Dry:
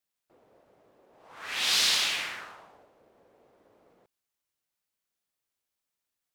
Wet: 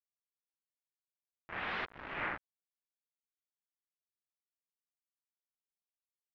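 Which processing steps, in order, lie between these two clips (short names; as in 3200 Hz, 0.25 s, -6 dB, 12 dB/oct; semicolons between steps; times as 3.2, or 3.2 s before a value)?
1.85–2.38 negative-ratio compressor -34 dBFS, ratio -1; bit-crush 5-bit; LPF 1900 Hz 24 dB/oct; gain -2 dB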